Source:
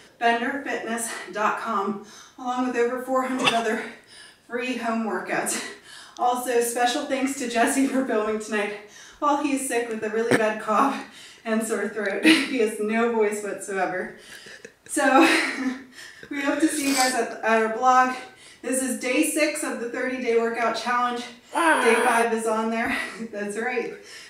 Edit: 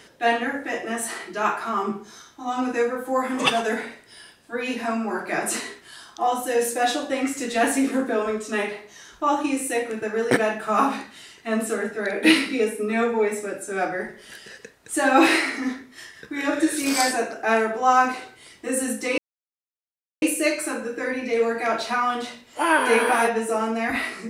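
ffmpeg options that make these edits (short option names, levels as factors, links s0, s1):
-filter_complex "[0:a]asplit=2[s0][s1];[s0]atrim=end=19.18,asetpts=PTS-STARTPTS,afade=t=out:st=19.176:d=0.004:c=hsin,apad=pad_dur=1.04[s2];[s1]atrim=start=19.18,asetpts=PTS-STARTPTS,afade=t=in:d=0.004:c=hsin[s3];[s2][s3]concat=n=2:v=0:a=1"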